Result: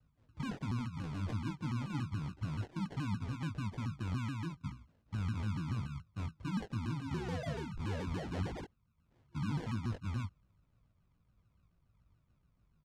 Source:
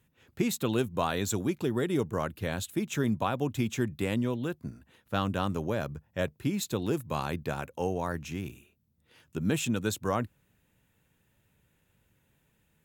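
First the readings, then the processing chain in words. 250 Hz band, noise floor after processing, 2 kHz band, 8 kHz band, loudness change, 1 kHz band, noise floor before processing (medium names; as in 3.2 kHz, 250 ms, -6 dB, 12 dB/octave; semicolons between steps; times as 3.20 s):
-9.0 dB, -75 dBFS, -10.5 dB, -19.5 dB, -8.0 dB, -11.5 dB, -72 dBFS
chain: amplifier tone stack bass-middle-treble 10-0-1; FFT band-reject 330–730 Hz; peak limiter -40.5 dBFS, peak gain reduction 6.5 dB; painted sound rise, 7.01–8.65 s, 240–7900 Hz -54 dBFS; sample-and-hold 36×; distance through air 79 m; doubling 19 ms -5 dB; vibrato with a chosen wave saw down 7 Hz, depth 250 cents; trim +10 dB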